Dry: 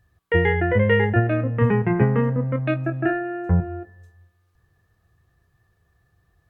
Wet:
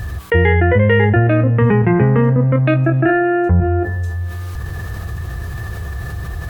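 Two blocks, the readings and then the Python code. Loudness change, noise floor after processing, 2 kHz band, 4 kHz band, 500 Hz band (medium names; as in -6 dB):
+7.0 dB, -27 dBFS, +6.0 dB, no reading, +6.5 dB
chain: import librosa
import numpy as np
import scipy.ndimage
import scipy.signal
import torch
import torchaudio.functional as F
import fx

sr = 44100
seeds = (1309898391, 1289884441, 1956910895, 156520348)

y = fx.peak_eq(x, sr, hz=66.0, db=7.5, octaves=0.91)
y = fx.env_flatten(y, sr, amount_pct=70)
y = y * librosa.db_to_amplitude(1.0)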